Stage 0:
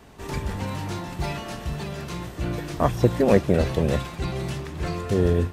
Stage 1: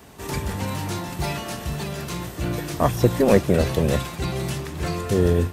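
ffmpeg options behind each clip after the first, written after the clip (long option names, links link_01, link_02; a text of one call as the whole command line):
ffmpeg -i in.wav -filter_complex "[0:a]highpass=56,highshelf=frequency=7800:gain=11,asplit=2[link_01][link_02];[link_02]aeval=exprs='clip(val(0),-1,0.0668)':channel_layout=same,volume=-10dB[link_03];[link_01][link_03]amix=inputs=2:normalize=0" out.wav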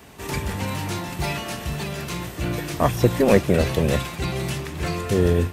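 ffmpeg -i in.wav -af "equalizer=frequency=2400:width=1.5:gain=4" out.wav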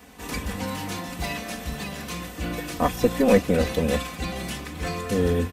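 ffmpeg -i in.wav -af "aecho=1:1:4:0.76,volume=-4dB" out.wav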